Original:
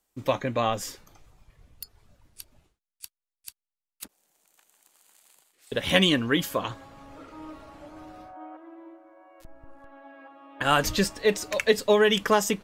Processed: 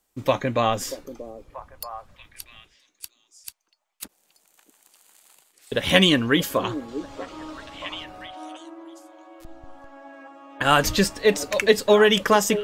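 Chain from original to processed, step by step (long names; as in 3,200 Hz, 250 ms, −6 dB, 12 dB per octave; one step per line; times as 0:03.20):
0:06.88–0:08.04: flat-topped bell 5,000 Hz +8.5 dB
echo through a band-pass that steps 634 ms, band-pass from 370 Hz, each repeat 1.4 octaves, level −9 dB
level +4 dB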